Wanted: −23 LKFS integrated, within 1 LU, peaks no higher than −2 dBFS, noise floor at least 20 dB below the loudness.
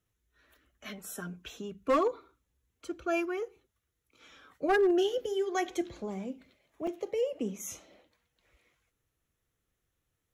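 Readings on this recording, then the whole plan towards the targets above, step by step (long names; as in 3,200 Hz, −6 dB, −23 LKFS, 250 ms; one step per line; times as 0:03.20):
share of clipped samples 0.3%; peaks flattened at −20.5 dBFS; number of dropouts 1; longest dropout 4.2 ms; integrated loudness −32.5 LKFS; sample peak −20.5 dBFS; target loudness −23.0 LKFS
→ clipped peaks rebuilt −20.5 dBFS
repair the gap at 0:06.87, 4.2 ms
level +9.5 dB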